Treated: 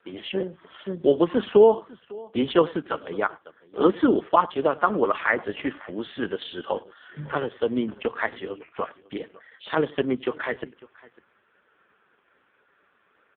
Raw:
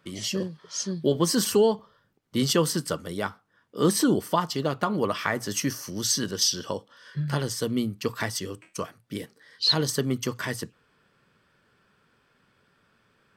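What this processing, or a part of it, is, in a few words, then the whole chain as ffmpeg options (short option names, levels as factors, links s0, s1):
satellite phone: -filter_complex "[0:a]asettb=1/sr,asplit=3[s0][s1][s2];[s0]atrim=end=8.084[s3];[s1]atrim=start=8.08:end=8.63,asetpts=PTS-STARTPTS,afade=t=in:d=0.004:c=qsin,afade=t=out:st=0.546:d=0.004:c=qsin,bandreject=f=60:t=h:w=6,bandreject=f=120:t=h:w=6,bandreject=f=180:t=h:w=6,bandreject=f=240:t=h:w=6,bandreject=f=300:t=h:w=6,bandreject=f=360:t=h:w=6,bandreject=f=420:t=h:w=6,bandreject=f=480:t=h:w=6,bandreject=f=540:t=h:w=6[s4];[s2]atrim=start=8.626[s5];[s3][s4]acrossfade=d=0.004:c1=hsin:c2=qsin[s6];[s6][s5]acrossfade=d=0.004:c1=qsin:c2=hsin,highpass=340,lowpass=3000,aecho=1:1:98:0.0708,aecho=1:1:551:0.0794,volume=2.37" -ar 8000 -c:a libopencore_amrnb -b:a 4750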